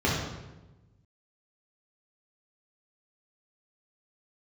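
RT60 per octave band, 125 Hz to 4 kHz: 1.7, 1.4, 1.2, 1.0, 0.90, 0.75 s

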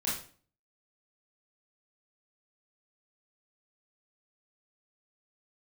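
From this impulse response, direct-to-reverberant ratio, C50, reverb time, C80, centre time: -7.5 dB, 3.5 dB, 0.45 s, 9.0 dB, 44 ms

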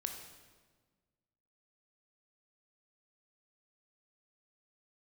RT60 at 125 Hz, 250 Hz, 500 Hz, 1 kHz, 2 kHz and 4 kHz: 1.9, 1.9, 1.6, 1.4, 1.2, 1.1 s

